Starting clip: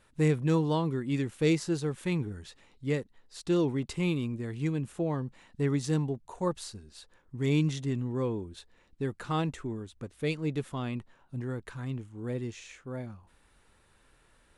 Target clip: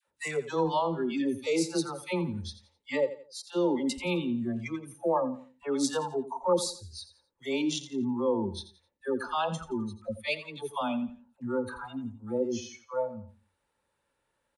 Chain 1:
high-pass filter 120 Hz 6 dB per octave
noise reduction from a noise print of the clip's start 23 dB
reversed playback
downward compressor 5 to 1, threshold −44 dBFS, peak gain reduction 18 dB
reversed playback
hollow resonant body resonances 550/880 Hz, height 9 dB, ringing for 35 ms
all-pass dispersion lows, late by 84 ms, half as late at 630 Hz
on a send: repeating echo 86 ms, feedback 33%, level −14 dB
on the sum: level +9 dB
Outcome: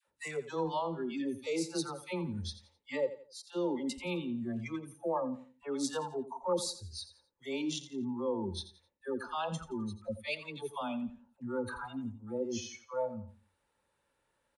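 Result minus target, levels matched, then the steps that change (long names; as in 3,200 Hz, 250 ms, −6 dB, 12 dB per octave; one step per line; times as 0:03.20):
downward compressor: peak gain reduction +6.5 dB
change: downward compressor 5 to 1, threshold −36 dBFS, peak gain reduction 12 dB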